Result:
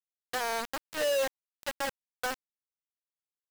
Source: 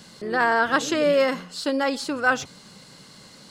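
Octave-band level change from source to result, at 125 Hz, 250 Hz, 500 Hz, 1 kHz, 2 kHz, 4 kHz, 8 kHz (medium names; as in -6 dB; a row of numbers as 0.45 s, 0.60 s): -17.0 dB, -21.0 dB, -10.0 dB, -12.0 dB, -13.0 dB, -7.0 dB, -5.0 dB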